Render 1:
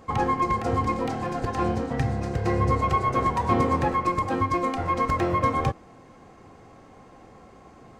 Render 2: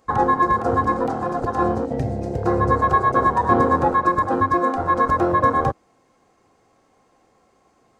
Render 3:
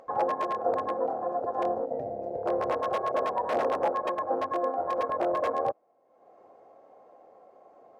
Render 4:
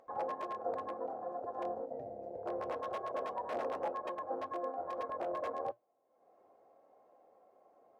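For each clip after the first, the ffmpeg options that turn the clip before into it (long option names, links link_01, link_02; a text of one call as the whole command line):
ffmpeg -i in.wav -af "afwtdn=0.0447,bass=frequency=250:gain=-7,treble=frequency=4000:gain=7,volume=7dB" out.wav
ffmpeg -i in.wav -af "aeval=exprs='(mod(2.99*val(0)+1,2)-1)/2.99':channel_layout=same,bandpass=frequency=610:width_type=q:width=3.4:csg=0,acompressor=mode=upward:threshold=-42dB:ratio=2.5" out.wav
ffmpeg -i in.wav -af "flanger=delay=2.7:depth=1.6:regen=-82:speed=2:shape=triangular,volume=-6dB" out.wav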